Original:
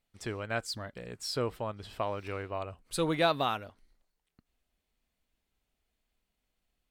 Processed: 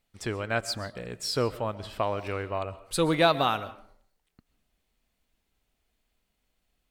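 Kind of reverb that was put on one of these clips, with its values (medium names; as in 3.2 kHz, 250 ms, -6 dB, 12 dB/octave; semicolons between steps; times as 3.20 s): algorithmic reverb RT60 0.57 s, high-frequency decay 0.55×, pre-delay 90 ms, DRR 16 dB; trim +5 dB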